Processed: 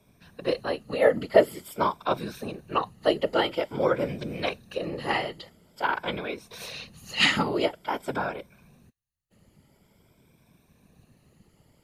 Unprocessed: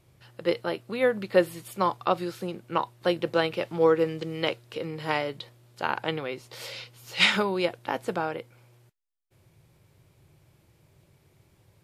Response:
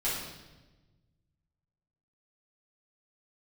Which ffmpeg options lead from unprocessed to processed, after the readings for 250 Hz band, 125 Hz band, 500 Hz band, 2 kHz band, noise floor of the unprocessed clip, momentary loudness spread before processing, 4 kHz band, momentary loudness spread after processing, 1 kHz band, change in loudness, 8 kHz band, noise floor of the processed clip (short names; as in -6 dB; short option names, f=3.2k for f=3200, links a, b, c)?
-0.5 dB, -0.5 dB, +0.5 dB, 0.0 dB, -64 dBFS, 14 LU, +0.5 dB, 15 LU, +1.0 dB, +0.5 dB, +1.0 dB, -65 dBFS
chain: -af "afftfilt=real='re*pow(10,11/40*sin(2*PI*(1.6*log(max(b,1)*sr/1024/100)/log(2)-(0.48)*(pts-256)/sr)))':imag='im*pow(10,11/40*sin(2*PI*(1.6*log(max(b,1)*sr/1024/100)/log(2)-(0.48)*(pts-256)/sr)))':win_size=1024:overlap=0.75,afreqshift=31,afftfilt=real='hypot(re,im)*cos(2*PI*random(0))':imag='hypot(re,im)*sin(2*PI*random(1))':win_size=512:overlap=0.75,volume=5dB"